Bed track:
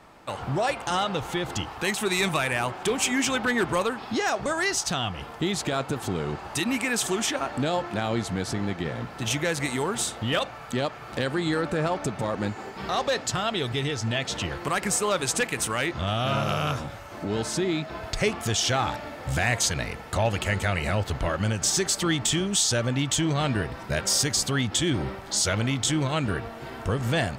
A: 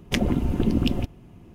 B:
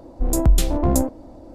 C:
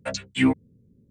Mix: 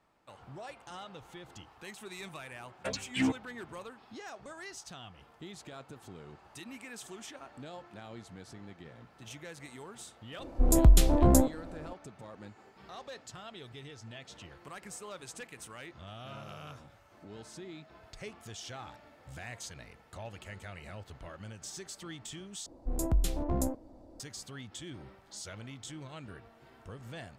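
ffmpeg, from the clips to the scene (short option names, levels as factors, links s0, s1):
-filter_complex "[2:a]asplit=2[s0][s1];[0:a]volume=0.1[s2];[3:a]asoftclip=type=tanh:threshold=0.141[s3];[s0]aresample=32000,aresample=44100[s4];[s2]asplit=2[s5][s6];[s5]atrim=end=22.664[s7];[s1]atrim=end=1.54,asetpts=PTS-STARTPTS,volume=0.237[s8];[s6]atrim=start=24.196[s9];[s3]atrim=end=1.1,asetpts=PTS-STARTPTS,volume=0.531,afade=t=in:d=0.004:c=hsin,afade=t=out:st=1.096:d=0.004:c=hsin,adelay=2790[s10];[s4]atrim=end=1.54,asetpts=PTS-STARTPTS,volume=0.668,afade=t=in:d=0.004:c=hsin,afade=t=out:st=1.536:d=0.004:c=hsin,adelay=10390[s11];[s7][s8]acrossfade=d=0.004:c1=hsin:c2=hsin[s12];[s12][s9]acrossfade=d=0.004:c1=hsin:c2=hsin[s13];[s13][s10][s11]amix=inputs=3:normalize=0"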